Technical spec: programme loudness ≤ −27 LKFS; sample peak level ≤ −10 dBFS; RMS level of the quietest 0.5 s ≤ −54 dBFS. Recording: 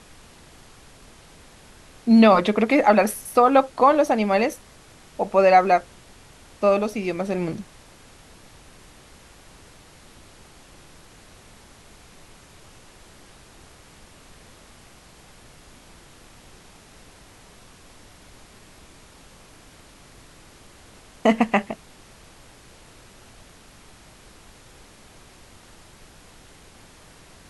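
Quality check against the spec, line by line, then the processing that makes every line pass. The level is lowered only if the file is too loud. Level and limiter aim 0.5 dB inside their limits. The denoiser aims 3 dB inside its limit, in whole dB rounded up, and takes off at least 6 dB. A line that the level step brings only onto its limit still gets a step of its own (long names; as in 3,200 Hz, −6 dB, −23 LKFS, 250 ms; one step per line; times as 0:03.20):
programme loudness −19.5 LKFS: out of spec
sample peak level −4.5 dBFS: out of spec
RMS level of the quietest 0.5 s −49 dBFS: out of spec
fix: level −8 dB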